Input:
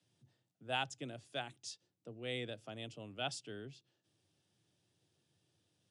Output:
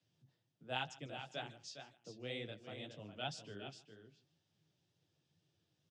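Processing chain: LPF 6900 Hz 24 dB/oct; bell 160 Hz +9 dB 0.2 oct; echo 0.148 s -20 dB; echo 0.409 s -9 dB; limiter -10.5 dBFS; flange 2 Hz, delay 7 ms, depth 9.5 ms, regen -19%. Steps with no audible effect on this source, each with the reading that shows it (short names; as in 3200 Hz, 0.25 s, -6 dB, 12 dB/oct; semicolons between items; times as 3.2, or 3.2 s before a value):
limiter -10.5 dBFS: input peak -21.5 dBFS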